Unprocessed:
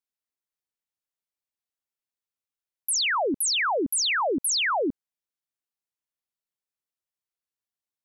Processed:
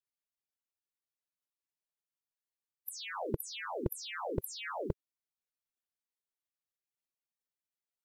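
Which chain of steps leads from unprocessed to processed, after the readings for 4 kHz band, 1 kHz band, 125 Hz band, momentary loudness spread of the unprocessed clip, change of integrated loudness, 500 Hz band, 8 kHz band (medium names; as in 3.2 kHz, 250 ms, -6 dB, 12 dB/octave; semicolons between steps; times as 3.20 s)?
-19.5 dB, -15.0 dB, +10.0 dB, 5 LU, -16.0 dB, -11.0 dB, -22.0 dB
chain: spectral gate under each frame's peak -15 dB weak; trim +14.5 dB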